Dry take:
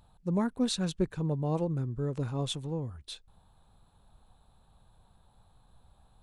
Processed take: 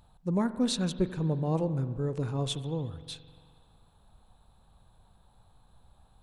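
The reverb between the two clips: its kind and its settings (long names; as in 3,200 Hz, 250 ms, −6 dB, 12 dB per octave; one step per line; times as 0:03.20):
spring reverb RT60 1.9 s, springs 44 ms, chirp 50 ms, DRR 12.5 dB
level +1 dB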